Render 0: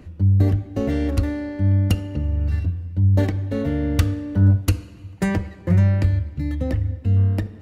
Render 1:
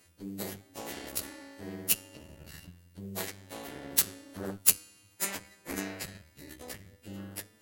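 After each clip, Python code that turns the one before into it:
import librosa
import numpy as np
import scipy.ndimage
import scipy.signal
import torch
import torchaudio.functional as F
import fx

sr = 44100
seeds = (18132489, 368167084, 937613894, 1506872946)

y = fx.freq_snap(x, sr, grid_st=2)
y = fx.cheby_harmonics(y, sr, harmonics=(3, 4), levels_db=(-6, -12), full_scale_db=-4.5)
y = fx.riaa(y, sr, side='recording')
y = y * 10.0 ** (-9.0 / 20.0)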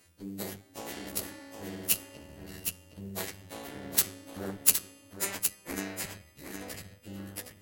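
y = x + 10.0 ** (-7.0 / 20.0) * np.pad(x, (int(765 * sr / 1000.0), 0))[:len(x)]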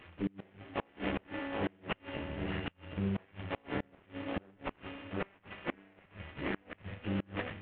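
y = fx.cvsd(x, sr, bps=16000)
y = fx.gate_flip(y, sr, shuts_db=-32.0, range_db=-31)
y = y * 10.0 ** (9.5 / 20.0)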